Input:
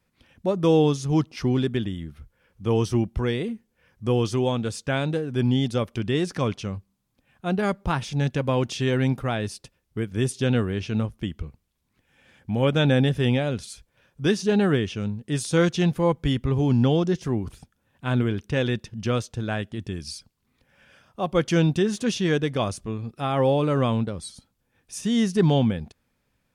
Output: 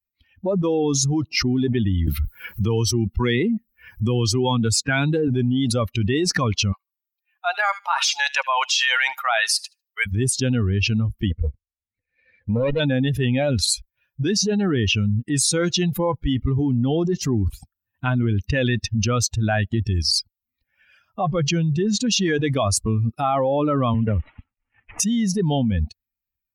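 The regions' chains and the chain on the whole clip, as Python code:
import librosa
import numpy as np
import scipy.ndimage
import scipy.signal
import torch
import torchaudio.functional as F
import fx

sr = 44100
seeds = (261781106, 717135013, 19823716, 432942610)

y = fx.chain(x, sr, fx.peak_eq(hz=600.0, db=-11.0, octaves=0.23),
    fx.band_squash(depth_pct=70), at=(2.07, 5.28))
y = fx.chain(y, sr, fx.highpass(hz=720.0, slope=24),
    fx.echo_wet_highpass(ms=75, feedback_pct=31, hz=1500.0, wet_db=-13.5), at=(6.72, 10.06))
y = fx.chain(y, sr, fx.lower_of_two(delay_ms=0.47),
    fx.lowpass(hz=3800.0, slope=12),
    fx.peak_eq(hz=490.0, db=12.0, octaves=0.3), at=(11.3, 12.8))
y = fx.chain(y, sr, fx.lowpass(hz=6900.0, slope=12),
    fx.peak_eq(hz=140.0, db=13.0, octaves=0.35), at=(21.21, 22.11))
y = fx.chain(y, sr, fx.cvsd(bps=16000),
    fx.band_squash(depth_pct=40), at=(23.94, 25.0))
y = fx.bin_expand(y, sr, power=2.0)
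y = fx.high_shelf(y, sr, hz=6300.0, db=-6.0)
y = fx.env_flatten(y, sr, amount_pct=100)
y = y * 10.0 ** (-6.0 / 20.0)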